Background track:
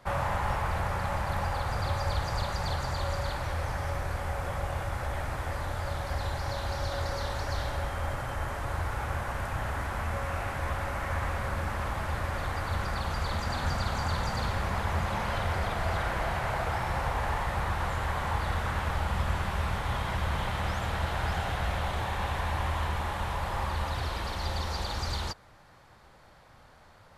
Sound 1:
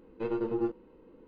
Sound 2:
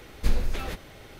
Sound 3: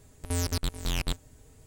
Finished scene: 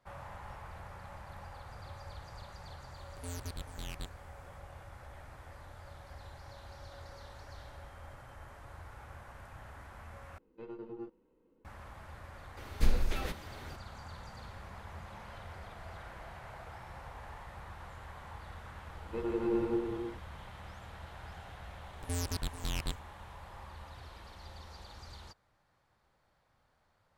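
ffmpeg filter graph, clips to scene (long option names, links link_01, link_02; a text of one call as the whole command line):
ffmpeg -i bed.wav -i cue0.wav -i cue1.wav -i cue2.wav -filter_complex "[3:a]asplit=2[link_01][link_02];[1:a]asplit=2[link_03][link_04];[0:a]volume=-17.5dB[link_05];[link_01]bandreject=frequency=5200:width=6.8[link_06];[link_04]aecho=1:1:160|280|370|437.5|488.1|526.1:0.794|0.631|0.501|0.398|0.316|0.251[link_07];[link_02]agate=range=-13dB:threshold=-50dB:ratio=16:release=100:detection=peak[link_08];[link_05]asplit=2[link_09][link_10];[link_09]atrim=end=10.384[link_11];[link_03]atrim=end=1.27,asetpts=PTS-STARTPTS,volume=-14dB[link_12];[link_10]atrim=start=11.646[link_13];[link_06]atrim=end=1.66,asetpts=PTS-STARTPTS,volume=-13dB,afade=type=in:duration=0.004:curve=hsin,afade=type=out:start_time=1.656:duration=0.004:curve=hsin,adelay=2930[link_14];[2:a]atrim=end=1.19,asetpts=PTS-STARTPTS,volume=-3.5dB,afade=type=in:duration=0.004:curve=hsin,afade=type=out:start_time=1.186:duration=0.004:curve=hsin,adelay=12570[link_15];[link_07]atrim=end=1.27,asetpts=PTS-STARTPTS,volume=-4.5dB,afade=type=in:duration=0.004:curve=hsin,afade=type=out:start_time=1.266:duration=0.004:curve=hsin,adelay=18930[link_16];[link_08]atrim=end=1.66,asetpts=PTS-STARTPTS,volume=-6.5dB,afade=type=in:duration=0.004:curve=hsin,afade=type=out:start_time=1.656:duration=0.004:curve=hsin,adelay=21790[link_17];[link_11][link_12]acrossfade=duration=0.004:curve1=hsin:curve2=hsin[link_18];[link_18][link_13]acrossfade=duration=0.004:curve1=hsin:curve2=hsin[link_19];[link_19][link_14][link_15][link_16][link_17]amix=inputs=5:normalize=0" out.wav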